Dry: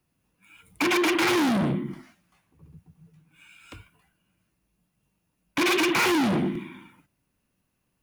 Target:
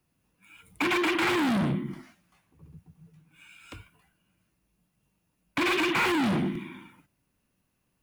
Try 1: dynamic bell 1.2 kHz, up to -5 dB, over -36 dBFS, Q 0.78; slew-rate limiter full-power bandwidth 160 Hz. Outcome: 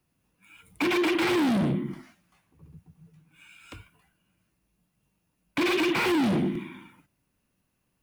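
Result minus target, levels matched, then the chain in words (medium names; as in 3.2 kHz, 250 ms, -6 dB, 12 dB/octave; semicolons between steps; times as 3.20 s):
1 kHz band -2.5 dB
dynamic bell 470 Hz, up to -5 dB, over -36 dBFS, Q 0.78; slew-rate limiter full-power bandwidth 160 Hz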